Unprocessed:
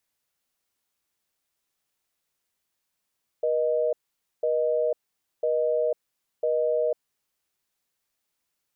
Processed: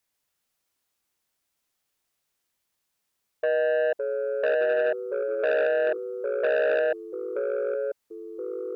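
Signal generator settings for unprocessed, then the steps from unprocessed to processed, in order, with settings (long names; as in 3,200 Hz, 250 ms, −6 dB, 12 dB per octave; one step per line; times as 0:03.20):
call progress tone busy tone, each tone −24 dBFS 3.69 s
dynamic equaliser 680 Hz, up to +4 dB, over −40 dBFS, Q 1.6
delay with pitch and tempo change per echo 141 ms, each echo −2 semitones, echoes 3, each echo −6 dB
saturating transformer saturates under 1,100 Hz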